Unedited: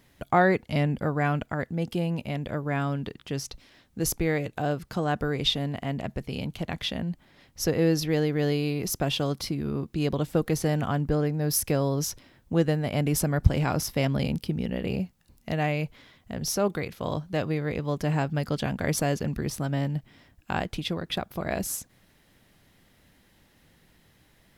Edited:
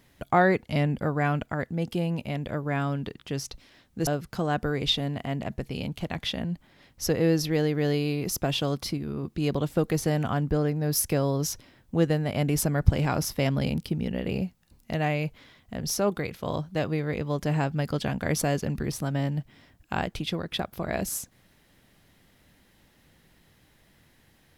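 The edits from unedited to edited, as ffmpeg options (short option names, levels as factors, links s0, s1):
-filter_complex "[0:a]asplit=4[s0][s1][s2][s3];[s0]atrim=end=4.072[s4];[s1]atrim=start=4.648:end=9.562[s5];[s2]atrim=start=9.558:end=9.812,asetpts=PTS-STARTPTS,volume=0.708[s6];[s3]atrim=start=9.808[s7];[s4][s5]acrossfade=d=0.004:c1=hsin:c2=hsin[s8];[s8][s6]acrossfade=d=0.004:c1=hsin:c2=hsin[s9];[s9][s7]acrossfade=d=0.004:c1=hsin:c2=hsin"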